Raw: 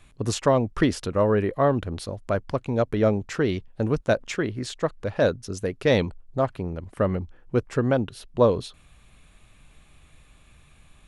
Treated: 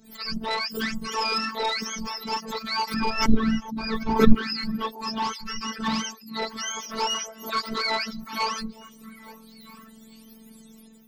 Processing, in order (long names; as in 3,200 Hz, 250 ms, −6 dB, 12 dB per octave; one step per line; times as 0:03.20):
frequency axis turned over on the octave scale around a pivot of 730 Hz
phases set to zero 222 Hz
automatic gain control gain up to 9 dB
soft clipping −15 dBFS, distortion −10 dB
brickwall limiter −19.5 dBFS, peak gain reduction 4.5 dB
0:02.94–0:04.35: spectral tilt −4.5 dB per octave
echo through a band-pass that steps 429 ms, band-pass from 220 Hz, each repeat 1.4 octaves, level −11.5 dB
dynamic equaliser 4,900 Hz, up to +8 dB, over −51 dBFS, Q 4
0:06.85–0:08.29: hollow resonant body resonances 650/980/1,400 Hz, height 9 dB, ringing for 30 ms
background raised ahead of every attack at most 120 dB per second
level −1 dB